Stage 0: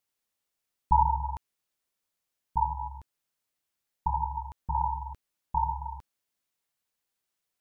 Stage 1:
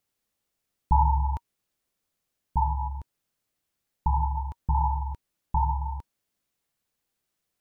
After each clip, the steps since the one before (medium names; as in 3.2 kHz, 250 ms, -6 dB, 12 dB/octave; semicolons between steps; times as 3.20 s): bass shelf 480 Hz +7.5 dB; band-stop 940 Hz, Q 21; in parallel at 0 dB: peak limiter -18 dBFS, peak gain reduction 9 dB; on the sum: trim -4 dB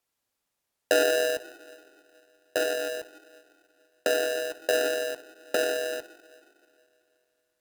two-slope reverb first 0.29 s, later 2.5 s, from -17 dB, DRR 8.5 dB; low-pass that closes with the level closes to 550 Hz, closed at -25.5 dBFS; polarity switched at an audio rate 560 Hz